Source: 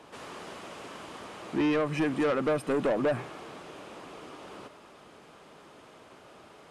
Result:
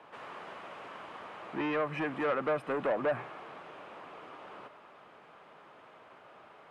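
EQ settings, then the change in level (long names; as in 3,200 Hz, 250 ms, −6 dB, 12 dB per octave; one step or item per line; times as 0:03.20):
three-way crossover with the lows and the highs turned down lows −16 dB, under 550 Hz, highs −18 dB, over 2,900 Hz
parametric band 150 Hz +8 dB 2.2 octaves
0.0 dB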